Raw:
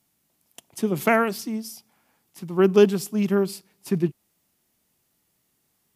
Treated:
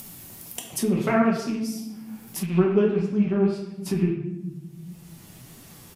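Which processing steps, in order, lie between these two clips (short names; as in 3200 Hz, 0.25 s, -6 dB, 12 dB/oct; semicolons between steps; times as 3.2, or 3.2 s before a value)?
rattling part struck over -33 dBFS, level -28 dBFS; bell 79 Hz +9.5 dB 2 oct; treble ducked by the level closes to 2100 Hz, closed at -15.5 dBFS; compressor 2:1, threshold -18 dBFS, peak gain reduction 6 dB; shoebox room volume 210 m³, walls mixed, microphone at 1.1 m; upward compressor, threshold -21 dBFS; high shelf 11000 Hz +10.5 dB, from 2.46 s -2.5 dB; speakerphone echo 0.11 s, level -15 dB; flange 1.6 Hz, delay 3.5 ms, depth 6.9 ms, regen +47%; de-hum 116 Hz, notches 34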